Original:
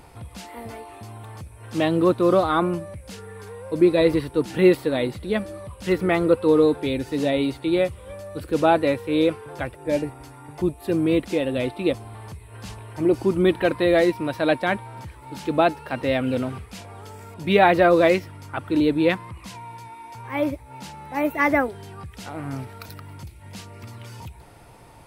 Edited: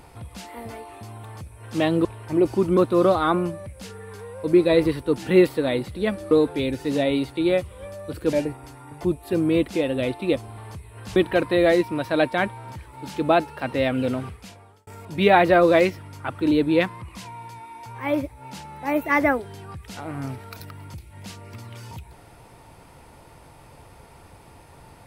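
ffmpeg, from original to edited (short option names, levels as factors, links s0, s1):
-filter_complex "[0:a]asplit=7[s0][s1][s2][s3][s4][s5][s6];[s0]atrim=end=2.052[s7];[s1]atrim=start=12.728:end=13.452[s8];[s2]atrim=start=2.048:end=5.592[s9];[s3]atrim=start=6.578:end=8.602[s10];[s4]atrim=start=9.898:end=12.732[s11];[s5]atrim=start=13.448:end=17.16,asetpts=PTS-STARTPTS,afade=t=out:st=3.082:d=0.63[s12];[s6]atrim=start=17.16,asetpts=PTS-STARTPTS,afade=t=in:d=0.004:c=hsin[s13];[s7][s8]acrossfade=d=0.004:c1=hsin:c2=hsin[s14];[s14][s9]acrossfade=d=0.004:c1=hsin:c2=hsin[s15];[s15][s10]acrossfade=d=0.004:c1=hsin:c2=hsin[s16];[s16][s11]acrossfade=d=0.004:c1=hsin:c2=hsin[s17];[s12][s13]concat=n=2:v=0:a=1[s18];[s17][s18]acrossfade=d=0.004:c1=hsin:c2=hsin"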